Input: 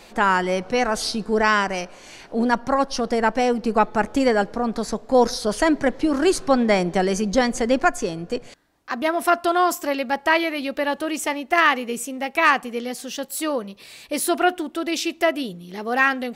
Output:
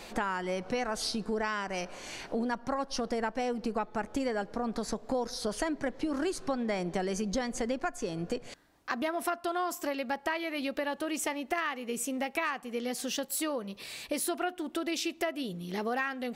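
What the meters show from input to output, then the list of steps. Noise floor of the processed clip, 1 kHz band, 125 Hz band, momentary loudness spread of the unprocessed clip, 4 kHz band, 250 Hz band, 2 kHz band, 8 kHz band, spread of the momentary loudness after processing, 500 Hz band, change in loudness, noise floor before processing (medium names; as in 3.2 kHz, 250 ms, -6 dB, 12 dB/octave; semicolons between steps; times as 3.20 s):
-53 dBFS, -13.5 dB, -9.5 dB, 11 LU, -9.5 dB, -10.5 dB, -13.5 dB, -7.5 dB, 4 LU, -12.0 dB, -12.0 dB, -47 dBFS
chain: compression 6:1, threshold -30 dBFS, peak gain reduction 17.5 dB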